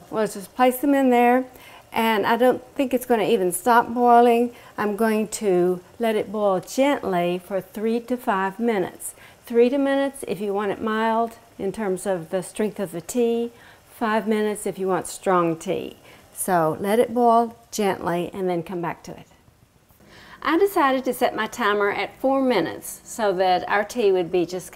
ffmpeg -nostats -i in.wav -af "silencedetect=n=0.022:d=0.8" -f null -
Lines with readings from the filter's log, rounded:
silence_start: 19.22
silence_end: 20.34 | silence_duration: 1.12